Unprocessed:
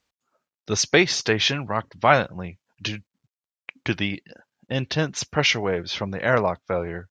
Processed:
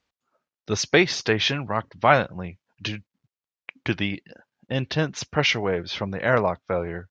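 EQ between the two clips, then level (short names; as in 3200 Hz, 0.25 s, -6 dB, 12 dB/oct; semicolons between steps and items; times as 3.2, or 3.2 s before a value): air absorption 79 m; 0.0 dB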